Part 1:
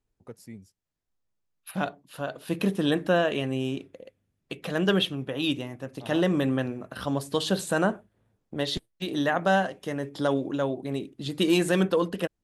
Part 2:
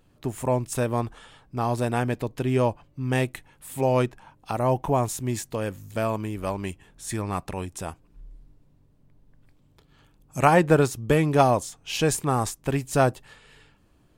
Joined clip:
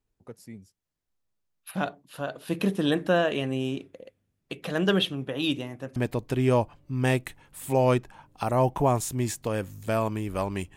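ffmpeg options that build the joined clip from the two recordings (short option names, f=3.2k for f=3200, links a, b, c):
-filter_complex "[0:a]apad=whole_dur=10.76,atrim=end=10.76,atrim=end=5.962[a];[1:a]atrim=start=2.038:end=6.84[b];[a][b]acrossfade=d=0.004:c1=hsin:c2=hsin"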